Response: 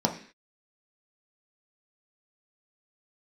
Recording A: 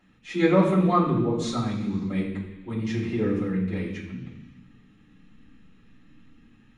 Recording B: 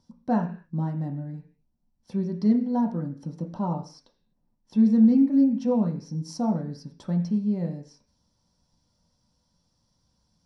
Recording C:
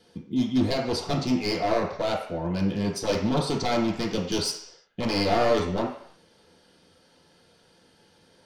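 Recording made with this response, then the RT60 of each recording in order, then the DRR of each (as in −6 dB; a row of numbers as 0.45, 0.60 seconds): B; non-exponential decay, 0.45 s, non-exponential decay; −9.5, 1.5, −3.5 decibels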